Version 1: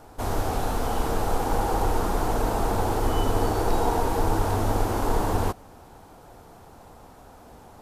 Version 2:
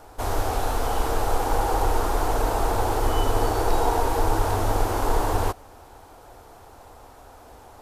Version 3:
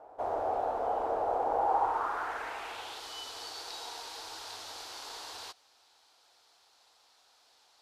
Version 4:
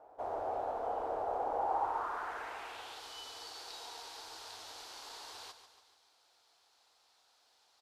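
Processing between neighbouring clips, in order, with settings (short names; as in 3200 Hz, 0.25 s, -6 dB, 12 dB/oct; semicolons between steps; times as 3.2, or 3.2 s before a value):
bell 180 Hz -12.5 dB 0.98 oct; gain +2.5 dB
band-pass sweep 650 Hz -> 4300 Hz, 1.56–3.1
feedback echo 0.143 s, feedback 53%, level -11 dB; gain -5.5 dB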